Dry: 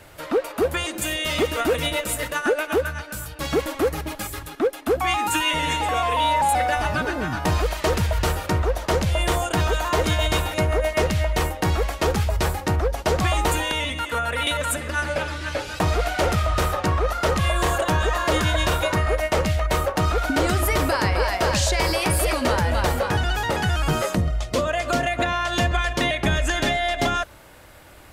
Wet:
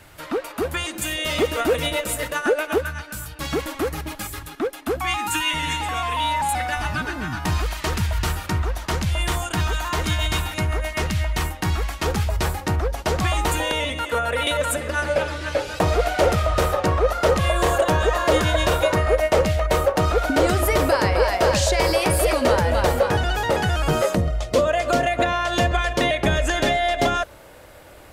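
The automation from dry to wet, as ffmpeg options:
-af "asetnsamples=n=441:p=0,asendcmd='1.18 equalizer g 2;2.78 equalizer g -5;4.98 equalizer g -11.5;12.06 equalizer g -3;13.6 equalizer g 6.5',equalizer=f=520:t=o:w=0.88:g=-5.5"

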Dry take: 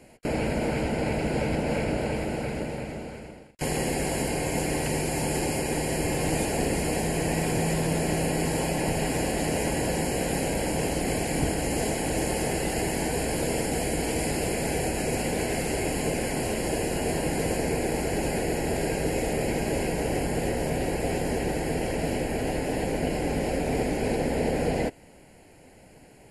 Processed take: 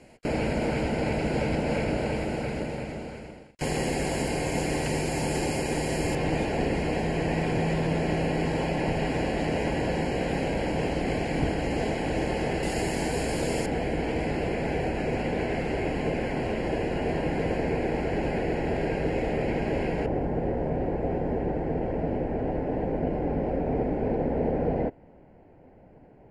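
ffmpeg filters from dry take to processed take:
-af "asetnsamples=n=441:p=0,asendcmd='6.15 lowpass f 3600;12.63 lowpass f 7000;13.66 lowpass f 2700;20.06 lowpass f 1100',lowpass=7.4k"

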